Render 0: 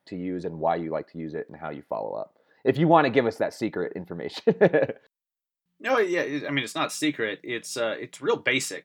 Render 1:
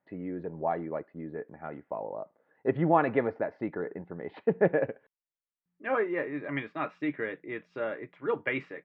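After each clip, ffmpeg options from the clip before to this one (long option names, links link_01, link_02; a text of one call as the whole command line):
ffmpeg -i in.wav -af "lowpass=frequency=2200:width=0.5412,lowpass=frequency=2200:width=1.3066,volume=-5.5dB" out.wav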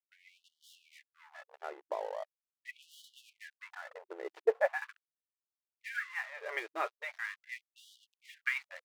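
ffmpeg -i in.wav -af "aeval=exprs='sgn(val(0))*max(abs(val(0))-0.00422,0)':channel_layout=same,afftfilt=real='re*gte(b*sr/1024,320*pow(2900/320,0.5+0.5*sin(2*PI*0.41*pts/sr)))':imag='im*gte(b*sr/1024,320*pow(2900/320,0.5+0.5*sin(2*PI*0.41*pts/sr)))':win_size=1024:overlap=0.75" out.wav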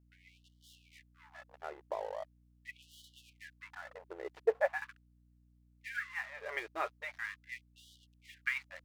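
ffmpeg -i in.wav -af "aeval=exprs='val(0)+0.000631*(sin(2*PI*60*n/s)+sin(2*PI*2*60*n/s)/2+sin(2*PI*3*60*n/s)/3+sin(2*PI*4*60*n/s)/4+sin(2*PI*5*60*n/s)/5)':channel_layout=same,volume=-1.5dB" out.wav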